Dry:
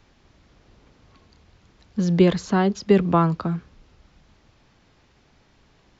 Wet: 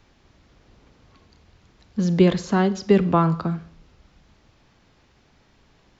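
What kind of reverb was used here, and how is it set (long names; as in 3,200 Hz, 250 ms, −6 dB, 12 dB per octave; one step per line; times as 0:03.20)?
four-comb reverb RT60 0.57 s, combs from 33 ms, DRR 15 dB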